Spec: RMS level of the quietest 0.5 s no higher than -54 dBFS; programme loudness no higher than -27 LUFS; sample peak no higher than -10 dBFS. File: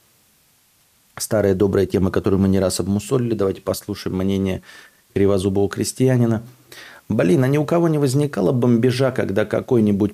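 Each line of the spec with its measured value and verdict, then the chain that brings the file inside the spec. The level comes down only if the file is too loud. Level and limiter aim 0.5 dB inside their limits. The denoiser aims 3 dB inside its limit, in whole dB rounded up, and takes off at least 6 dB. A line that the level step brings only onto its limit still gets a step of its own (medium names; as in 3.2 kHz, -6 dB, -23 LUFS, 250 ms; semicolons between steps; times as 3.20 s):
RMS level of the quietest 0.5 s -58 dBFS: pass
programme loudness -19.0 LUFS: fail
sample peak -5.5 dBFS: fail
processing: trim -8.5 dB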